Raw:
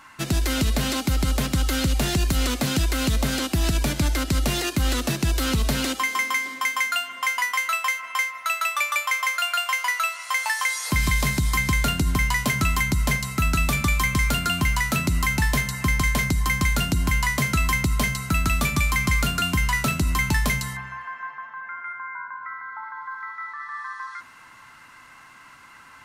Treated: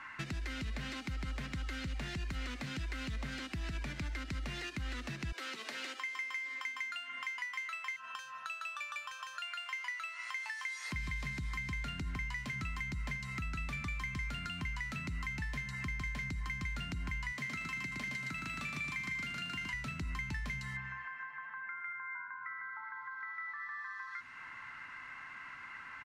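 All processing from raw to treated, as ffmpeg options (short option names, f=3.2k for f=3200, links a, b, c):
-filter_complex "[0:a]asettb=1/sr,asplit=3[a][b][c];[a]atrim=end=5.324[d];[b]atrim=start=5.32:end=6.65,asetpts=PTS-STARTPTS,afade=t=in:d=0.004:c=qsin,afade=t=out:st=1.326:d=0.004:c=qsin,highpass=f=340:w=0.5412,highpass=f=340:w=1.3066,asplit=2[e][f];[f]adelay=13,volume=-11dB[g];[e][g]amix=inputs=2:normalize=0,atrim=end_sample=58653[h];[c]atrim=start=6.646[i];[d][h]acrossfade=d=0.004:c1=hsin:c2=qsin[j];[j][i]acrossfade=d=0.004:c1=qsin:c2=hsin,asettb=1/sr,asplit=3[k][l][m];[k]atrim=end=7.964[n];[l]atrim=start=7.96:end=9.42,asetpts=PTS-STARTPTS,afade=t=in:d=0.004:c=qsin,afade=t=out:st=1.456:d=0.004:c=qsin,asuperstop=centerf=2100:order=4:qfactor=3.9,lowshelf=f=380:g=4.5[o];[m]atrim=start=9.416[p];[n][o]acrossfade=d=0.004:c1=hsin:c2=qsin[q];[q][p]acrossfade=d=0.004:c1=qsin:c2=hsin,asettb=1/sr,asplit=3[r][s][t];[r]atrim=end=17.324[u];[s]atrim=start=17.32:end=19.74,asetpts=PTS-STARTPTS,afade=t=in:d=0.004:c=qsin,afade=t=out:st=2.416:d=0.004:c=qsin,highpass=190,aecho=1:1:116|232|348|464|580:0.668|0.254|0.0965|0.0367|0.0139,atrim=end_sample=106722[v];[t]atrim=start=19.736[w];[u][v]acrossfade=d=0.004:c1=hsin:c2=qsin[x];[x][w]acrossfade=d=0.004:c1=qsin:c2=hsin,acompressor=threshold=-31dB:ratio=6,firequalizer=gain_entry='entry(620,0);entry(1900,11);entry(3300,-1);entry(12000,-20)':delay=0.05:min_phase=1,acrossover=split=250|3000[y][z][aa];[z]acompressor=threshold=-40dB:ratio=4[ab];[y][ab][aa]amix=inputs=3:normalize=0,volume=-5.5dB"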